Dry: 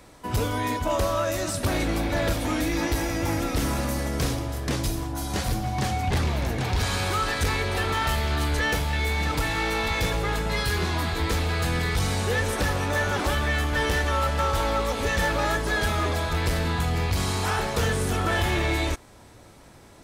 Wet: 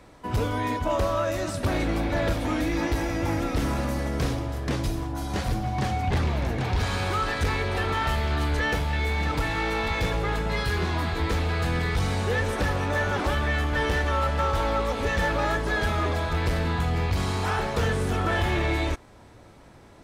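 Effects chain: high shelf 5000 Hz -11 dB

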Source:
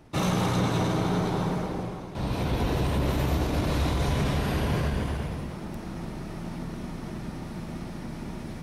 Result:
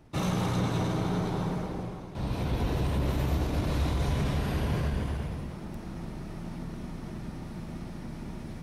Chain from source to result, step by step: low shelf 170 Hz +4.5 dB; gain -5 dB

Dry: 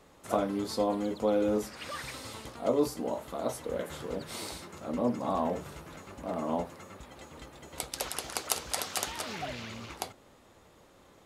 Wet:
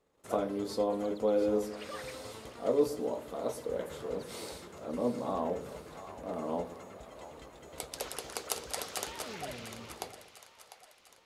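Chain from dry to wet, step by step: gate -56 dBFS, range -14 dB; bell 450 Hz +6.5 dB 0.58 oct; split-band echo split 590 Hz, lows 0.118 s, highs 0.699 s, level -12 dB; gain -5 dB

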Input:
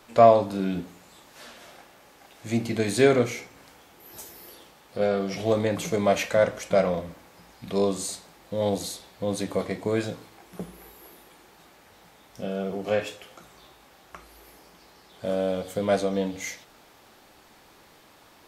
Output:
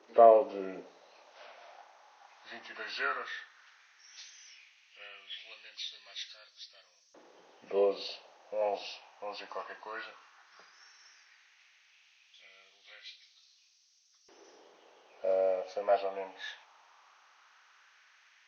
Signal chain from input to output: nonlinear frequency compression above 1200 Hz 1.5:1; LFO high-pass saw up 0.14 Hz 370–5900 Hz; gain -8.5 dB

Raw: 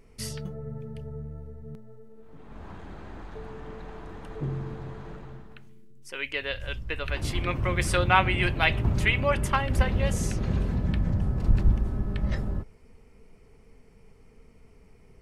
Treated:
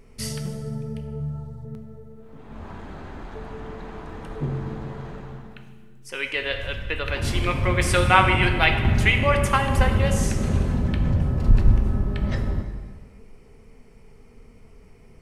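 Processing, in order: 1.2–1.65 ten-band EQ 125 Hz +10 dB, 250 Hz -9 dB, 500 Hz -5 dB, 1000 Hz +11 dB, 2000 Hz -10 dB, 4000 Hz +9 dB, 8000 Hz +6 dB; plate-style reverb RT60 1.6 s, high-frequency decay 0.85×, DRR 5.5 dB; gain +4 dB

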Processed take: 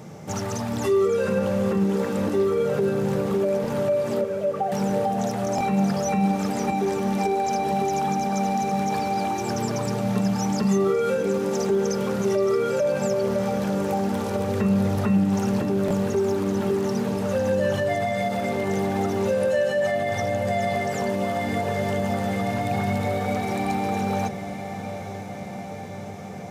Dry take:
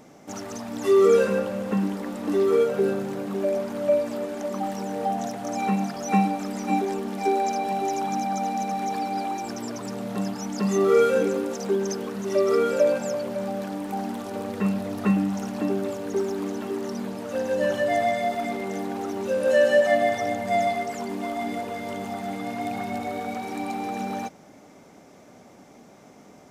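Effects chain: 4.21–4.72 sine-wave speech; diffused feedback echo 0.894 s, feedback 69%, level -13.5 dB; in parallel at -1 dB: compressor, threshold -29 dBFS, peak gain reduction 14.5 dB; on the sum: limiter -16.5 dBFS, peak gain reduction 9 dB; on a send at -10 dB: reverb RT60 0.30 s, pre-delay 3 ms; on the sum: stuck buffer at 3.62/5.56/15.86, samples 1024, times 1

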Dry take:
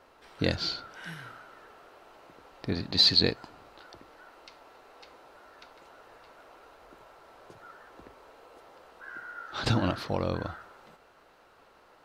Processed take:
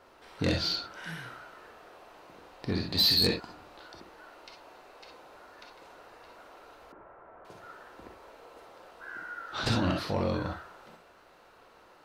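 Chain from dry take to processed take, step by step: non-linear reverb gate 80 ms rising, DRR 3 dB; soft clip -19 dBFS, distortion -11 dB; 6.92–7.45 LPF 1800 Hz 24 dB/oct

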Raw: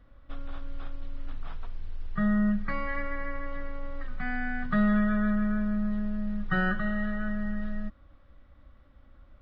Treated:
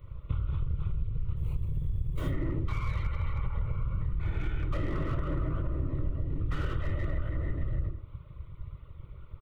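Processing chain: tracing distortion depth 0.15 ms; comb 4.9 ms, depth 32%; 1.37–2.27 sample-rate reducer 1700 Hz, jitter 0%; on a send at -1 dB: reverb RT60 0.35 s, pre-delay 3 ms; 3.05–3.75 on the sum: spectral repair 390–940 Hz before; whisperiser; in parallel at -5.5 dB: hard clip -23 dBFS, distortion -6 dB; 3.94–4.4 on the sum: dynamic EQ 3200 Hz, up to -4 dB, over -45 dBFS, Q 0.87; fixed phaser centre 1100 Hz, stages 8; compressor 10:1, threshold -26 dBFS, peak gain reduction 14 dB; slew limiter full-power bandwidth 18 Hz

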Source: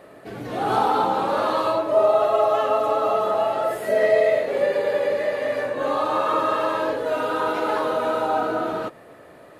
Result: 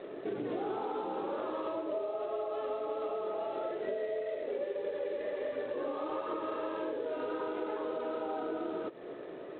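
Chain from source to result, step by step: HPF 120 Hz 24 dB/oct; 4.18–6.43 phaser 1.4 Hz, delay 4.5 ms, feedback 31%; bell 380 Hz +14.5 dB 0.87 oct; compressor 16:1, threshold -27 dBFS, peak gain reduction 21.5 dB; gain -5.5 dB; G.726 24 kbps 8000 Hz

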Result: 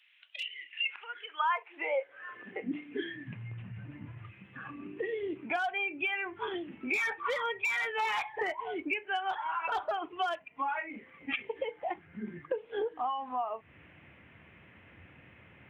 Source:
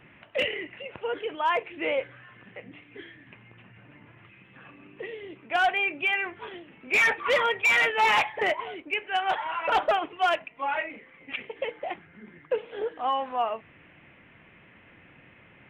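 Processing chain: compressor 10:1, threshold -38 dBFS, peak gain reduction 18.5 dB; spectral noise reduction 11 dB; high-pass sweep 3700 Hz -> 71 Hz, 0.53–3.79; gain +8 dB

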